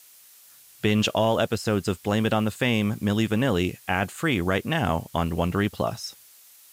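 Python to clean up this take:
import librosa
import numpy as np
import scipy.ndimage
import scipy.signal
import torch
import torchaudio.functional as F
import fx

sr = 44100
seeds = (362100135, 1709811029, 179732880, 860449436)

y = fx.noise_reduce(x, sr, print_start_s=6.2, print_end_s=6.7, reduce_db=19.0)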